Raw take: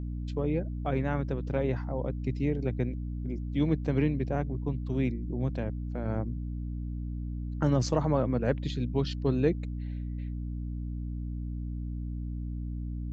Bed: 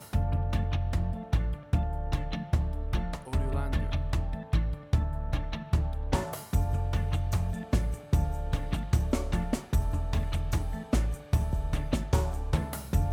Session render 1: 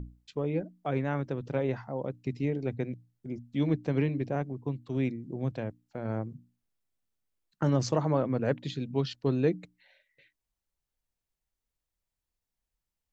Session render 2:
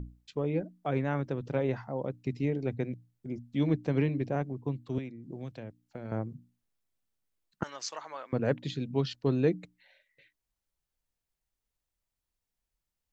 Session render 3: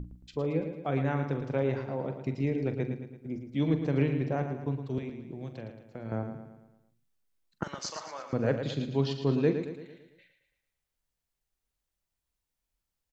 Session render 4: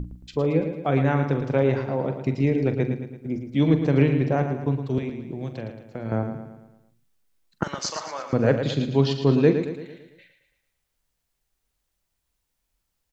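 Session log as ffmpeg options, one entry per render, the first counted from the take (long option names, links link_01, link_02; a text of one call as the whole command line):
ffmpeg -i in.wav -af "bandreject=frequency=60:width_type=h:width=6,bandreject=frequency=120:width_type=h:width=6,bandreject=frequency=180:width_type=h:width=6,bandreject=frequency=240:width_type=h:width=6,bandreject=frequency=300:width_type=h:width=6" out.wav
ffmpeg -i in.wav -filter_complex "[0:a]asettb=1/sr,asplit=3[link_01][link_02][link_03];[link_01]atrim=end=4.984[link_04];[link_02]atrim=start=4.98:end=6.12,asetpts=PTS-STARTPTS,afade=type=in:duration=0.004:curve=qsin,afade=type=out:start_time=1.136:duration=0.004:curve=qsin,acrossover=split=600|1800[link_05][link_06][link_07];[link_05]acompressor=threshold=-39dB:ratio=4[link_08];[link_06]acompressor=threshold=-55dB:ratio=4[link_09];[link_07]acompressor=threshold=-55dB:ratio=4[link_10];[link_08][link_09][link_10]amix=inputs=3:normalize=0[link_11];[link_03]atrim=start=6.116[link_12];[link_04][link_11]acrossfade=duration=0.004:curve1=hsin:curve2=qsin[link_13];[link_13][link_12]acrossfade=duration=0.004:curve1=qsin:curve2=hsin,asettb=1/sr,asplit=3[link_14][link_15][link_16];[link_14]atrim=end=7.634[link_17];[link_15]atrim=start=7.63:end=8.33,asetpts=PTS-STARTPTS,afade=type=in:duration=0.004:curve=qsin,afade=type=out:start_time=0.696:duration=0.004:curve=qsin,highpass=1400[link_18];[link_16]atrim=start=8.326[link_19];[link_17][link_18]acrossfade=duration=0.004:curve1=hsin:curve2=qsin[link_20];[link_20][link_19]acrossfade=duration=0.004:curve1=qsin:curve2=hsin" out.wav
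ffmpeg -i in.wav -filter_complex "[0:a]asplit=2[link_01][link_02];[link_02]adelay=44,volume=-11.5dB[link_03];[link_01][link_03]amix=inputs=2:normalize=0,aecho=1:1:112|224|336|448|560|672:0.376|0.188|0.094|0.047|0.0235|0.0117" out.wav
ffmpeg -i in.wav -af "volume=8dB" out.wav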